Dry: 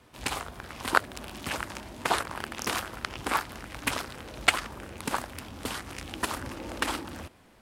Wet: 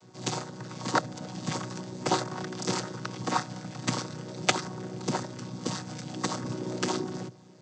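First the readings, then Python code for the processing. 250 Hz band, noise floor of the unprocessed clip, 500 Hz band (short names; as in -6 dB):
+6.0 dB, -57 dBFS, +3.0 dB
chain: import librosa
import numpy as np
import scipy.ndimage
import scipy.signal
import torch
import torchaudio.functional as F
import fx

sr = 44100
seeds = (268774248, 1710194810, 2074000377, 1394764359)

y = fx.chord_vocoder(x, sr, chord='major triad', root=47)
y = fx.high_shelf_res(y, sr, hz=3700.0, db=11.5, q=1.5)
y = y * 10.0 ** (1.5 / 20.0)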